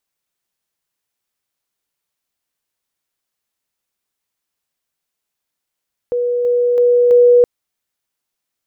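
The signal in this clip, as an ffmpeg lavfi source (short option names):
-f lavfi -i "aevalsrc='pow(10,(-14.5+3*floor(t/0.33))/20)*sin(2*PI*486*t)':d=1.32:s=44100"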